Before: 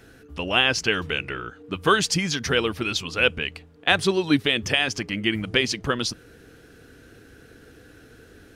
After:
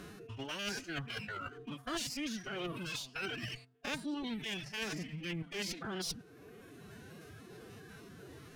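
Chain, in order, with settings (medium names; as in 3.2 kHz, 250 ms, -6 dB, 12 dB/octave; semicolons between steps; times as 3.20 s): spectrogram pixelated in time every 100 ms; reverse; compression 12:1, threshold -34 dBFS, peak gain reduction 18.5 dB; reverse; one-sided clip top -44.5 dBFS; reverb removal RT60 1.4 s; formant-preserving pitch shift +7.5 st; trim +3 dB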